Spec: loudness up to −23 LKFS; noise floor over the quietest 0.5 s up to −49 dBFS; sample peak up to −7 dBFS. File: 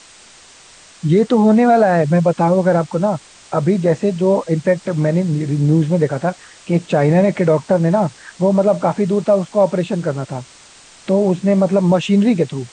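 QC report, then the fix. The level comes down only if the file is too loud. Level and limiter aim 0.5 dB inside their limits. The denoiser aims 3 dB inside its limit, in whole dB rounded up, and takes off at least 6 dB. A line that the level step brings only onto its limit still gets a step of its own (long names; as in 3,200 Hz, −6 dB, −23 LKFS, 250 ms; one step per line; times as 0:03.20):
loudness −16.0 LKFS: out of spec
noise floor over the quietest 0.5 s −44 dBFS: out of spec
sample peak −4.0 dBFS: out of spec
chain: level −7.5 dB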